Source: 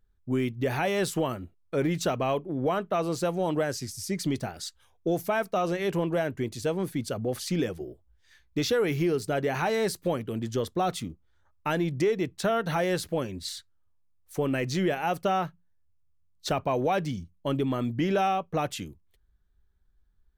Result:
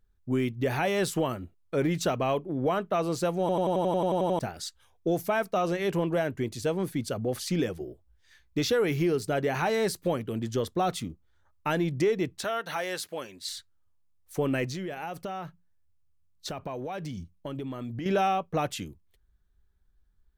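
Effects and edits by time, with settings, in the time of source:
3.4 stutter in place 0.09 s, 11 plays
12.44–13.49 HPF 1000 Hz 6 dB/oct
14.65–18.06 compressor, threshold -32 dBFS

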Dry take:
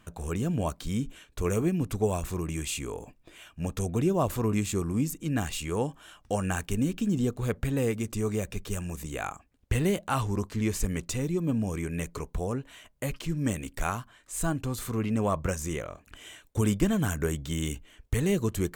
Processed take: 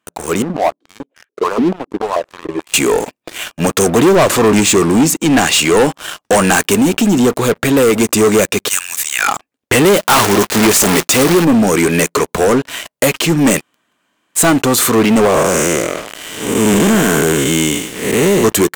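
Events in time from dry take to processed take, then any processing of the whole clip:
0.42–2.74 stepped band-pass 6.9 Hz 240–1700 Hz
4.15–5.77 LPF 8700 Hz
6.75–7.94 compressor 1.5:1, threshold -31 dBFS
8.68–9.28 HPF 1400 Hz 24 dB/oct
9.96–11.45 block floating point 3-bit
13.59–14.38 room tone, crossfade 0.06 s
15.25–18.44 time blur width 0.3 s
whole clip: HPF 290 Hz 12 dB/oct; AGC gain up to 9 dB; sample leveller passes 5

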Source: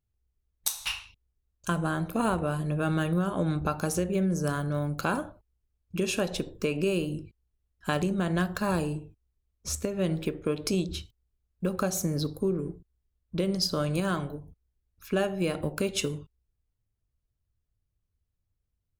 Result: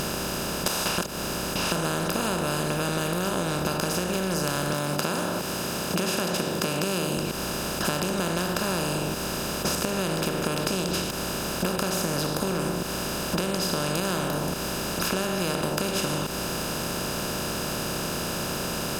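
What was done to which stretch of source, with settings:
0.98–1.72 reverse
4.73–7.17 HPF 130 Hz 24 dB/oct
whole clip: per-bin compression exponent 0.2; notch 430 Hz, Q 12; compressor, threshold -25 dBFS; gain +1.5 dB

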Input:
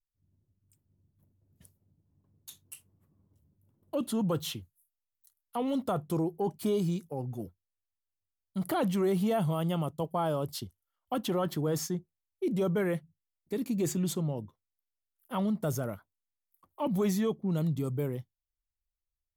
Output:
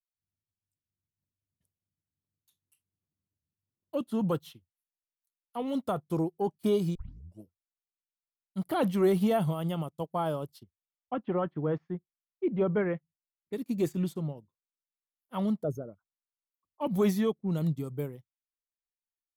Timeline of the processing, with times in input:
6.95 tape start 0.48 s
10.63–13.53 LPF 2500 Hz 24 dB/oct
15.63–16.81 formant sharpening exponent 2
whole clip: dynamic EQ 7000 Hz, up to -6 dB, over -58 dBFS, Q 2.6; upward expander 2.5:1, over -44 dBFS; gain +5 dB

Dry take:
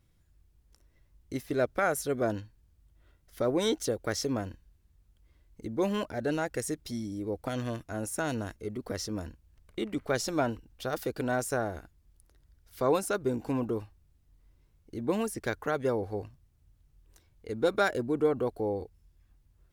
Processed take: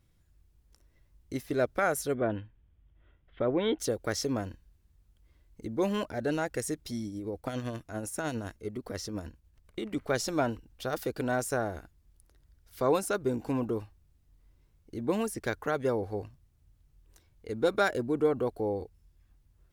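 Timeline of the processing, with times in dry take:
2.14–3.79 Chebyshev low-pass 3400 Hz, order 5
7.07–9.91 tremolo 10 Hz, depth 41%

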